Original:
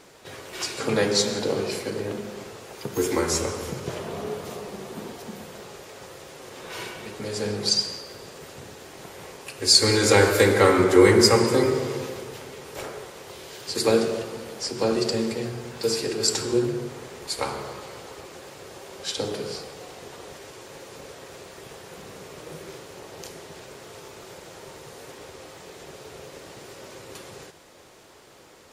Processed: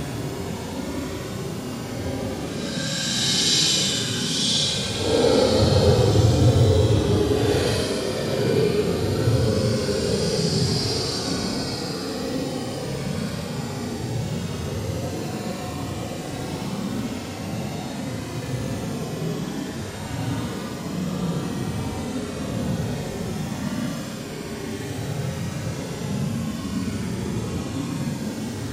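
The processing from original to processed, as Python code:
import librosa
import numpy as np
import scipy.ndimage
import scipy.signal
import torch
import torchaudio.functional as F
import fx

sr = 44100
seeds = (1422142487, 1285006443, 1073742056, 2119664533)

y = fx.peak_eq(x, sr, hz=110.0, db=14.5, octaves=0.65)
y = fx.dmg_noise_band(y, sr, seeds[0], low_hz=94.0, high_hz=280.0, level_db=-37.0)
y = fx.paulstretch(y, sr, seeds[1], factor=16.0, window_s=0.05, from_s=18.87)
y = y * librosa.db_to_amplitude(7.5)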